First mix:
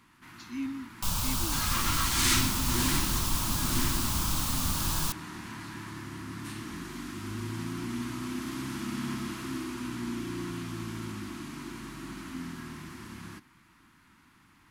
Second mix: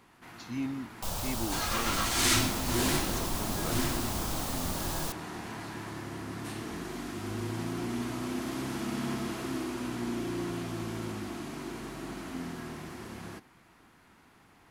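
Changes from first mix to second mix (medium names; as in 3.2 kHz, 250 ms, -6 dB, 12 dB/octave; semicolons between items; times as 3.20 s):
speech: remove elliptic high-pass 240 Hz; second sound -5.5 dB; master: add high-order bell 560 Hz +13.5 dB 1.2 oct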